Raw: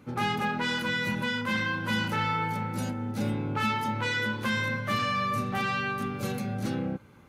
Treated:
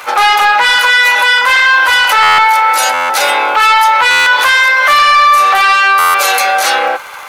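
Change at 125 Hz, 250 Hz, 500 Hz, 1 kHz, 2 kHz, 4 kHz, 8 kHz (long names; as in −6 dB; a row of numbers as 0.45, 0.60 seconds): below −10 dB, can't be measured, +15.5 dB, +23.5 dB, +23.0 dB, +23.0 dB, +26.5 dB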